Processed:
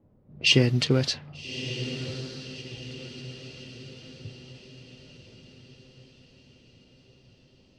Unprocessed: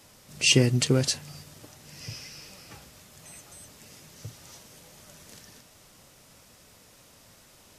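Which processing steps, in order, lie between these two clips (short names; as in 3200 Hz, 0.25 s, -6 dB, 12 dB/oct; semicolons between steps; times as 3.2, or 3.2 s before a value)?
low-pass opened by the level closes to 350 Hz, open at -19 dBFS; resonant high shelf 5900 Hz -12 dB, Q 1.5; on a send: diffused feedback echo 1.202 s, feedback 50%, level -11 dB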